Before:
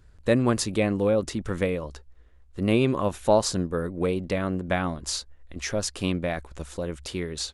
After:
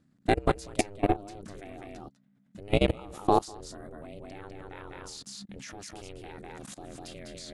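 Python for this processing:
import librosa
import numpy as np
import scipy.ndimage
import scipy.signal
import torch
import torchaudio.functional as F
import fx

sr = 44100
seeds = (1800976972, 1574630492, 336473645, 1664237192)

p1 = x * np.sin(2.0 * np.pi * 200.0 * np.arange(len(x)) / sr)
p2 = fx.high_shelf(p1, sr, hz=2400.0, db=2.5)
p3 = p2 + fx.echo_single(p2, sr, ms=200, db=-5.5, dry=0)
p4 = fx.level_steps(p3, sr, step_db=23)
y = p4 * 10.0 ** (2.5 / 20.0)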